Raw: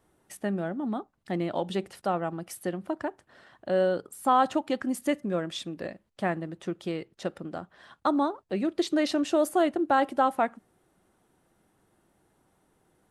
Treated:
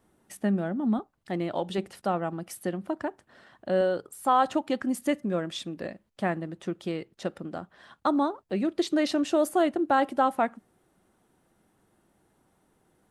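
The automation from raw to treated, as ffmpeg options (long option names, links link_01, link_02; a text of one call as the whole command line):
ffmpeg -i in.wav -af "asetnsamples=nb_out_samples=441:pad=0,asendcmd='0.99 equalizer g -3;1.78 equalizer g 4;3.81 equalizer g -6.5;4.48 equalizer g 2.5',equalizer=frequency=220:width_type=o:width=0.51:gain=7" out.wav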